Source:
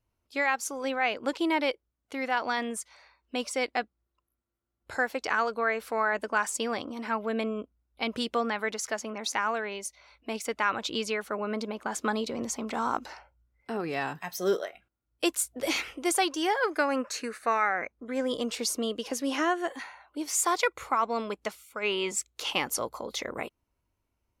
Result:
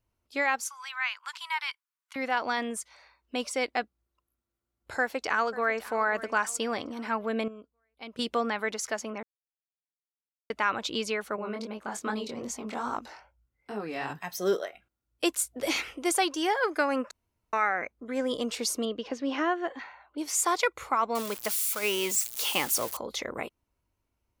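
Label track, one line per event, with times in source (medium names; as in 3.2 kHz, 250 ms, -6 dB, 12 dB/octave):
0.620000	2.160000	Chebyshev high-pass 970 Hz, order 5
4.980000	5.780000	echo throw 540 ms, feedback 45%, level -16.5 dB
7.480000	8.190000	gain -12 dB
9.230000	10.500000	mute
11.360000	14.100000	chorus 2.5 Hz, delay 19 ms, depth 5.9 ms
17.110000	17.530000	room tone
18.850000	20.180000	distance through air 180 m
21.150000	22.970000	zero-crossing glitches of -25 dBFS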